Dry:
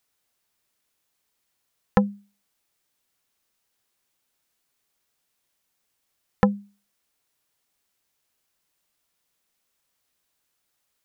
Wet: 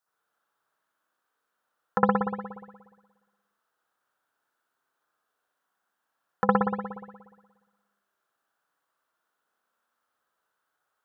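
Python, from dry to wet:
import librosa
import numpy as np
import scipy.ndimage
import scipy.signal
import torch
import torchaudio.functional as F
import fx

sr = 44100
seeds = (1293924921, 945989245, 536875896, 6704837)

y = fx.highpass(x, sr, hz=580.0, slope=6)
y = fx.high_shelf_res(y, sr, hz=1800.0, db=-7.0, q=3.0)
y = fx.rev_spring(y, sr, rt60_s=1.3, pass_ms=(59,), chirp_ms=55, drr_db=-8.0)
y = y * librosa.db_to_amplitude(-4.5)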